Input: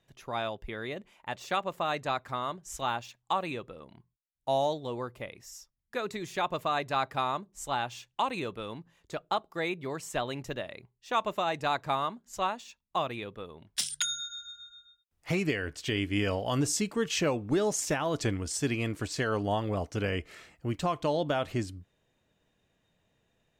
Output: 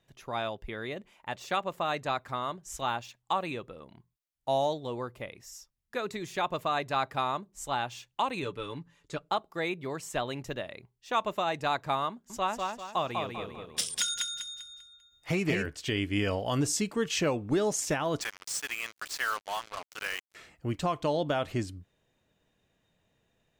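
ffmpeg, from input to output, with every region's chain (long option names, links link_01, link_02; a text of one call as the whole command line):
ffmpeg -i in.wav -filter_complex "[0:a]asettb=1/sr,asplit=3[link_01][link_02][link_03];[link_01]atrim=end=8.424[link_04];[link_02]atrim=start=8.42:end=9.29,asetpts=PTS-STARTPTS,afade=type=in:duration=0.004:curve=qsin,afade=type=out:start_time=0.866:duration=0.004:curve=qsin,lowpass=frequency=11000:width=0.5412,lowpass=frequency=11000:width=1.3066,equalizer=frequency=700:width_type=o:width=0.29:gain=-10.5,aecho=1:1:6.9:0.66,atrim=end_sample=38367[link_05];[link_03]atrim=start=9.286[link_06];[link_04][link_05]acrossfade=duration=0.004:curve1=hsin:curve2=qsin[link_07];[link_07][link_06]acrossfade=duration=0.004:curve1=qsin:curve2=hsin,asettb=1/sr,asplit=3[link_08][link_09][link_10];[link_08]atrim=end=12.104[link_11];[link_09]atrim=start=12.1:end=15.66,asetpts=PTS-STARTPTS,afade=type=in:duration=0.004:curve=qsin,afade=type=out:start_time=3.556:duration=0.004:curve=qsin,bandreject=frequency=4100:width=23,aecho=1:1:197|394|591|788|985:0.668|0.241|0.0866|0.0312|0.0112,atrim=end_sample=156996[link_12];[link_10]atrim=start=15.656[link_13];[link_11][link_12]acrossfade=duration=0.004:curve1=hsin:curve2=qsin[link_14];[link_14][link_13]acrossfade=duration=0.004:curve1=qsin:curve2=hsin,asettb=1/sr,asplit=3[link_15][link_16][link_17];[link_15]atrim=end=18.214[link_18];[link_16]atrim=start=18.21:end=20.35,asetpts=PTS-STARTPTS,afade=type=in:duration=0.004:curve=qsin,afade=type=out:start_time=2.136:duration=0.004:curve=qsin,highpass=frequency=1200:width_type=q:width=1.5,acrusher=bits=5:mix=0:aa=0.5[link_19];[link_17]atrim=start=20.346[link_20];[link_18][link_19]acrossfade=duration=0.004:curve1=hsin:curve2=qsin[link_21];[link_21][link_20]acrossfade=duration=0.004:curve1=qsin:curve2=hsin" out.wav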